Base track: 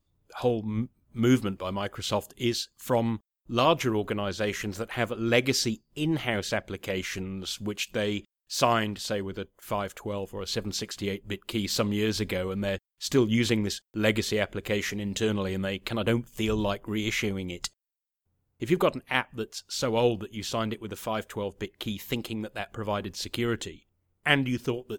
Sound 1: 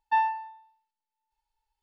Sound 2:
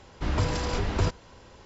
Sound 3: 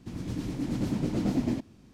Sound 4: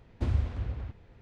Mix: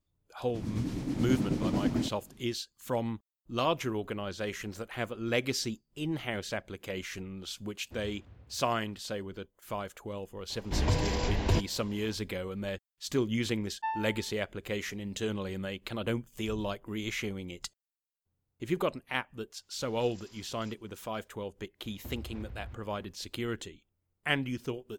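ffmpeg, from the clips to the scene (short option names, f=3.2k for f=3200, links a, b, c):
-filter_complex "[4:a]asplit=2[a][b];[2:a]asplit=2[c][d];[0:a]volume=-6.5dB[e];[a]highpass=79[f];[c]equalizer=f=1.3k:t=o:w=0.25:g=-13.5[g];[d]aderivative[h];[b]acompressor=threshold=-35dB:ratio=6:attack=3.2:release=140:knee=1:detection=peak[i];[3:a]atrim=end=1.93,asetpts=PTS-STARTPTS,volume=-1.5dB,afade=t=in:d=0.004:c=hsin,afade=t=out:st=1.926:d=0.004:c=hsin,adelay=480[j];[f]atrim=end=1.21,asetpts=PTS-STARTPTS,volume=-17dB,afade=t=in:d=0.004:c=hsin,afade=t=out:st=1.206:d=0.004:c=hsin,adelay=339570S[k];[g]atrim=end=1.65,asetpts=PTS-STARTPTS,volume=-1.5dB,afade=t=in:d=0.004:c=hsin,afade=t=out:st=1.646:d=0.004:c=hsin,adelay=463050S[l];[1:a]atrim=end=1.82,asetpts=PTS-STARTPTS,volume=-10dB,afade=t=in:d=0.004:c=hsin,afade=t=out:st=1.816:d=0.004:c=hsin,adelay=13710[m];[h]atrim=end=1.65,asetpts=PTS-STARTPTS,volume=-15dB,afade=t=in:d=0.004:c=hsin,afade=t=out:st=1.646:d=0.004:c=hsin,adelay=19630[n];[i]atrim=end=1.21,asetpts=PTS-STARTPTS,volume=-4dB,afade=t=in:d=0.004:c=hsin,afade=t=out:st=1.206:d=0.004:c=hsin,adelay=21840[o];[e][j][k][l][m][n][o]amix=inputs=7:normalize=0"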